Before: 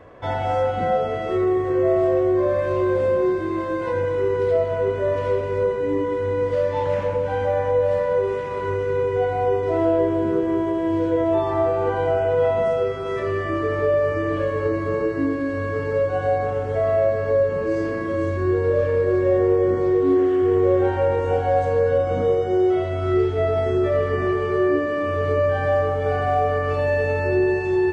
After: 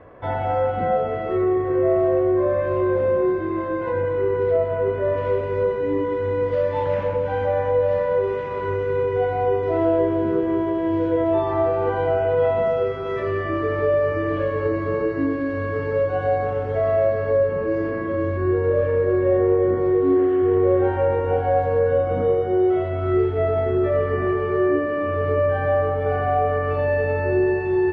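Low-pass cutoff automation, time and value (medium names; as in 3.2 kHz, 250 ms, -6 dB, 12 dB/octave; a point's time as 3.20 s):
4.86 s 2.3 kHz
5.63 s 3.7 kHz
17.17 s 3.7 kHz
17.65 s 2.4 kHz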